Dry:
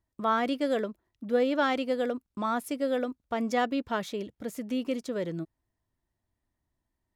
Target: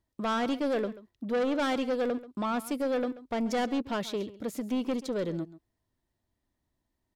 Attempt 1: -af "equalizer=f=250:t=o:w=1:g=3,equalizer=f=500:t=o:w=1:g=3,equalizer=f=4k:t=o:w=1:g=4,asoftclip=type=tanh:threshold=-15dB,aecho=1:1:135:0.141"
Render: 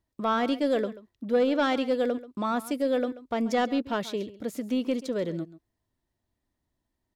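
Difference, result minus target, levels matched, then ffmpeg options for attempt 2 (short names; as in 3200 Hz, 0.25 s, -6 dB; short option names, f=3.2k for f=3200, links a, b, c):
soft clip: distortion -11 dB
-af "equalizer=f=250:t=o:w=1:g=3,equalizer=f=500:t=o:w=1:g=3,equalizer=f=4k:t=o:w=1:g=4,asoftclip=type=tanh:threshold=-24.5dB,aecho=1:1:135:0.141"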